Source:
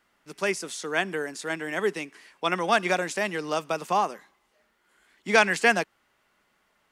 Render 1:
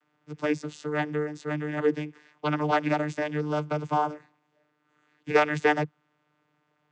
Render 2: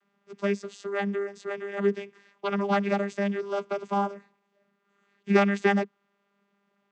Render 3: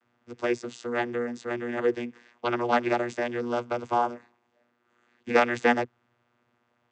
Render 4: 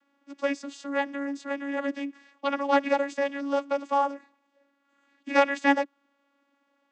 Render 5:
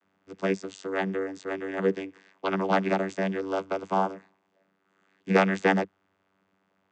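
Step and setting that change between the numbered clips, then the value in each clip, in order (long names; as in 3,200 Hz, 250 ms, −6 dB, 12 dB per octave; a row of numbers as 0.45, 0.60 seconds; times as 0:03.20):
channel vocoder, frequency: 150, 200, 120, 280, 96 Hertz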